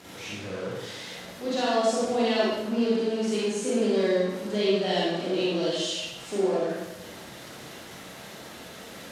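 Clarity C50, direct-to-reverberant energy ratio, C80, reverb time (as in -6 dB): -3.5 dB, -7.0 dB, 1.0 dB, 1.1 s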